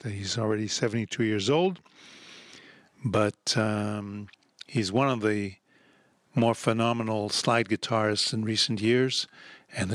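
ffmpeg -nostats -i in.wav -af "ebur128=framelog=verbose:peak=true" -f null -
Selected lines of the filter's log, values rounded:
Integrated loudness:
  I:         -26.9 LUFS
  Threshold: -38.0 LUFS
Loudness range:
  LRA:         4.1 LU
  Threshold: -48.2 LUFS
  LRA low:   -29.9 LUFS
  LRA high:  -25.8 LUFS
True peak:
  Peak:       -8.3 dBFS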